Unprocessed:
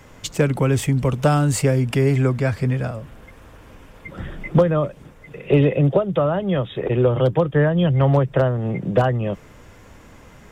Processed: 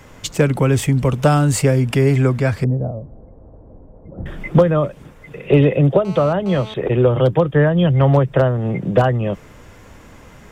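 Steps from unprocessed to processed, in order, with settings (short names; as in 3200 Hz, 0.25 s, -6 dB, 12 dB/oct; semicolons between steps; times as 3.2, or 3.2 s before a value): 2.64–4.26 Chebyshev low-pass 680 Hz, order 3; 6.05–6.74 GSM buzz -38 dBFS; gain +3 dB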